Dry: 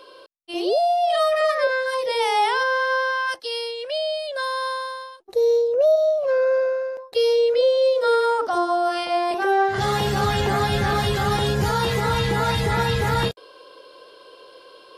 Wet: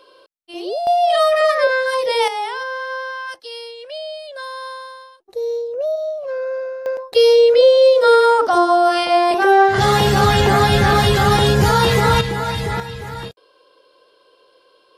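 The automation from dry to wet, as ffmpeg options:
ffmpeg -i in.wav -af "asetnsamples=nb_out_samples=441:pad=0,asendcmd='0.87 volume volume 5dB;2.28 volume volume -4.5dB;6.86 volume volume 7.5dB;12.21 volume volume -0.5dB;12.8 volume volume -8.5dB',volume=-3.5dB" out.wav

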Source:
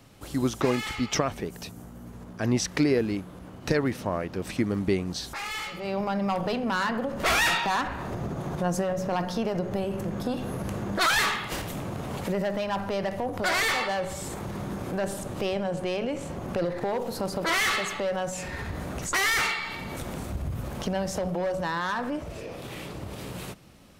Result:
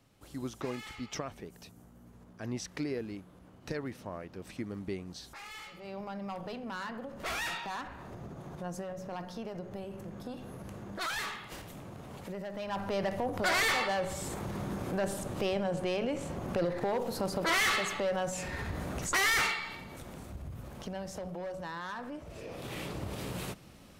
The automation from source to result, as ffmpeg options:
ffmpeg -i in.wav -af "volume=7dB,afade=type=in:start_time=12.5:duration=0.49:silence=0.334965,afade=type=out:start_time=19.41:duration=0.47:silence=0.398107,afade=type=in:start_time=22.22:duration=0.58:silence=0.316228" out.wav

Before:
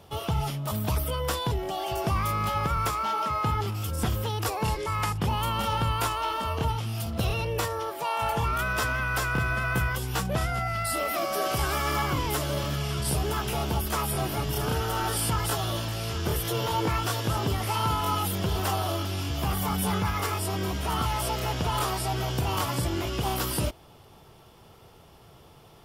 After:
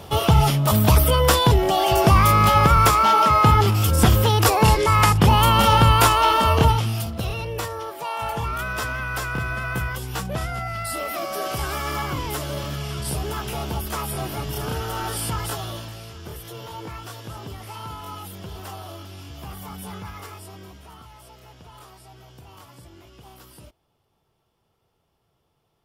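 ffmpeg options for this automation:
ffmpeg -i in.wav -af "volume=12dB,afade=type=out:start_time=6.58:duration=0.58:silence=0.251189,afade=type=out:start_time=15.41:duration=0.72:silence=0.354813,afade=type=out:start_time=20.13:duration=0.9:silence=0.334965" out.wav

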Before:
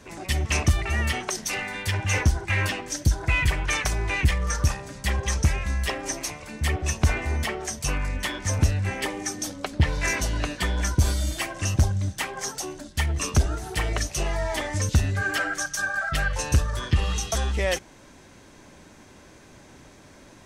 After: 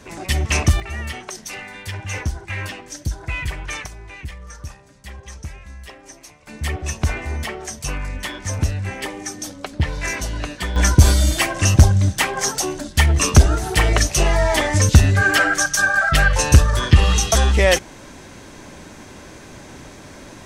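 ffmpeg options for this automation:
ffmpeg -i in.wav -af "asetnsamples=nb_out_samples=441:pad=0,asendcmd='0.8 volume volume -3.5dB;3.86 volume volume -11.5dB;6.47 volume volume 0.5dB;10.76 volume volume 10dB',volume=5dB" out.wav

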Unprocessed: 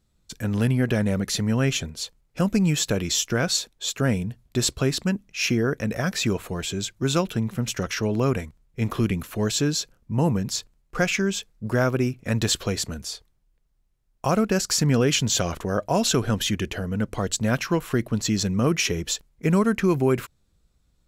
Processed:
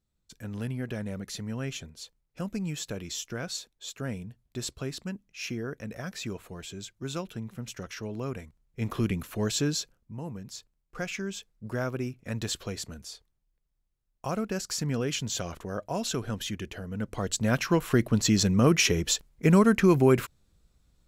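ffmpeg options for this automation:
ffmpeg -i in.wav -af "volume=13dB,afade=type=in:start_time=8.36:duration=0.7:silence=0.421697,afade=type=out:start_time=9.75:duration=0.45:silence=0.237137,afade=type=in:start_time=10.2:duration=1.34:silence=0.421697,afade=type=in:start_time=16.86:duration=1.15:silence=0.316228" out.wav

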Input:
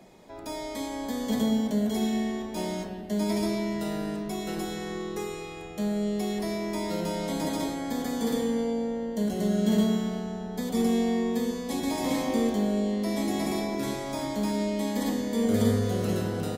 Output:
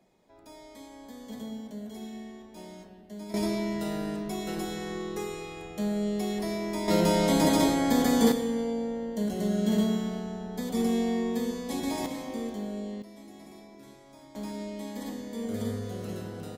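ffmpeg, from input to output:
ffmpeg -i in.wav -af "asetnsamples=nb_out_samples=441:pad=0,asendcmd='3.34 volume volume -1dB;6.88 volume volume 7dB;8.32 volume volume -2dB;12.06 volume volume -9dB;13.02 volume volume -20dB;14.35 volume volume -9dB',volume=-13.5dB" out.wav

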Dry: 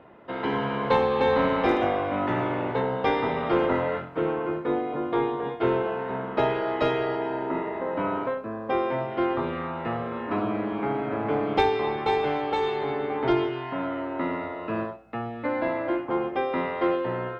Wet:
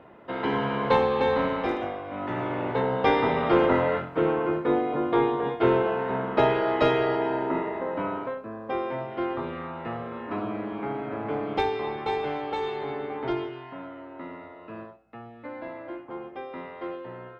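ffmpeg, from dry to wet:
ffmpeg -i in.wav -af "volume=13dB,afade=type=out:start_time=0.95:duration=1.08:silence=0.298538,afade=type=in:start_time=2.03:duration=1.07:silence=0.237137,afade=type=out:start_time=7.3:duration=0.92:silence=0.473151,afade=type=out:start_time=12.98:duration=0.95:silence=0.446684" out.wav

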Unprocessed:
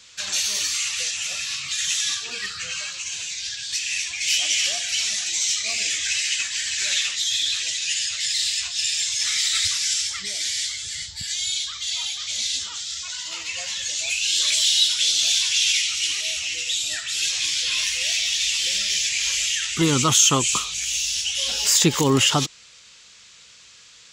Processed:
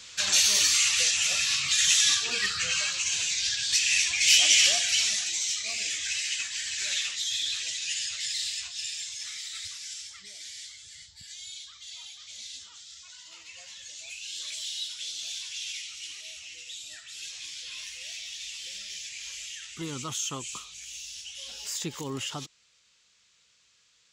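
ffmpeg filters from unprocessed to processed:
ffmpeg -i in.wav -af "volume=2dB,afade=type=out:start_time=4.61:duration=0.82:silence=0.354813,afade=type=out:start_time=8.13:duration=1.29:silence=0.334965" out.wav

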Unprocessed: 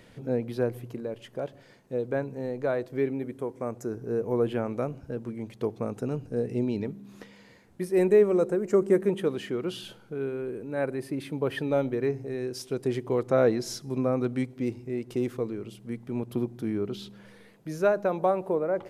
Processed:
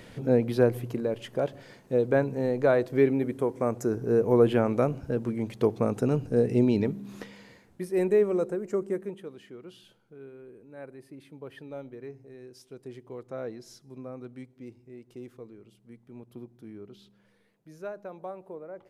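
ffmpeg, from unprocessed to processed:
ffmpeg -i in.wav -af "volume=5.5dB,afade=type=out:start_time=7.13:duration=0.69:silence=0.375837,afade=type=out:start_time=8.36:duration=0.89:silence=0.266073" out.wav

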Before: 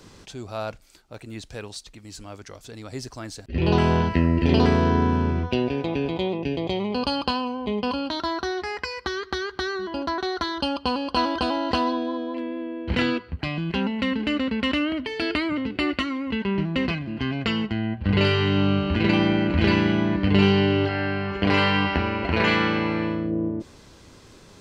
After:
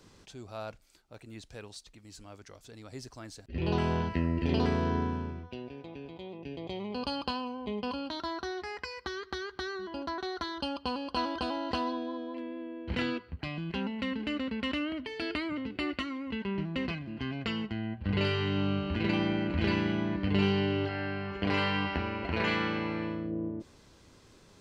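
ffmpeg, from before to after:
ffmpeg -i in.wav -af "afade=type=out:start_time=4.97:duration=0.46:silence=0.354813,afade=type=in:start_time=6.23:duration=0.88:silence=0.334965" out.wav

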